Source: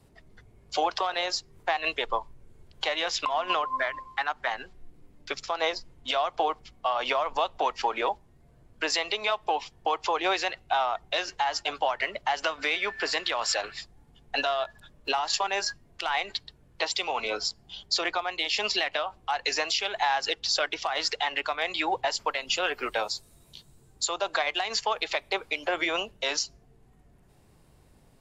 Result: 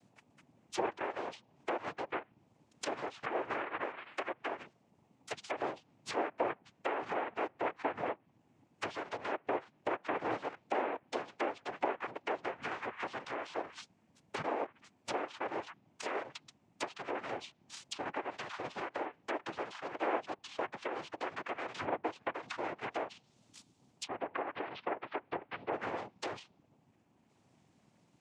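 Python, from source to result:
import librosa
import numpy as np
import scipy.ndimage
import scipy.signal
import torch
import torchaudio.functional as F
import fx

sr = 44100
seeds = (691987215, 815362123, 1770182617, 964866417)

y = fx.noise_vocoder(x, sr, seeds[0], bands=4)
y = fx.gaussian_blur(y, sr, sigma=3.2, at=(24.06, 25.72), fade=0.02)
y = fx.env_lowpass_down(y, sr, base_hz=1400.0, full_db=-26.0)
y = F.gain(torch.from_numpy(y), -7.0).numpy()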